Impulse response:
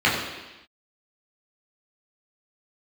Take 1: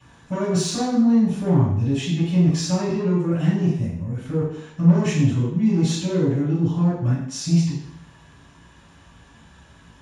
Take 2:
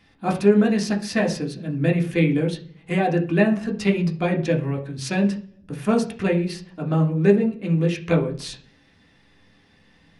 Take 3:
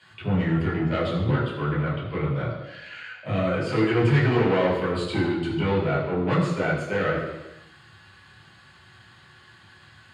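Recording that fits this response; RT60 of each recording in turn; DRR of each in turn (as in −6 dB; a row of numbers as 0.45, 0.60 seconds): 3; 0.70 s, 0.45 s, non-exponential decay; −14.5, 0.5, −7.0 decibels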